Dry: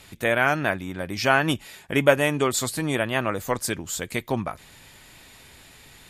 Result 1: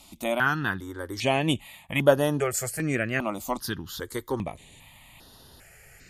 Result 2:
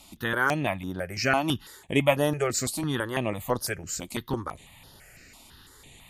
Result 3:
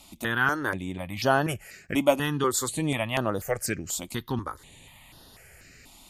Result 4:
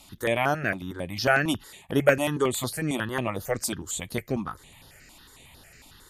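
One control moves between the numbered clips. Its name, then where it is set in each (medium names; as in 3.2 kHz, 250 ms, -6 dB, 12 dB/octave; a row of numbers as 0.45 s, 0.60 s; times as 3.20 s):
stepped phaser, rate: 2.5 Hz, 6 Hz, 4.1 Hz, 11 Hz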